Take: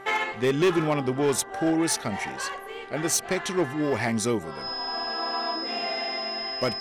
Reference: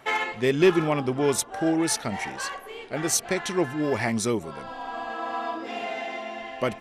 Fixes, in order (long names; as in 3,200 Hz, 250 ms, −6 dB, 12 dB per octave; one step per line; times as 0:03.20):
clipped peaks rebuilt −17 dBFS
hum removal 392.1 Hz, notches 5
notch filter 5,100 Hz, Q 30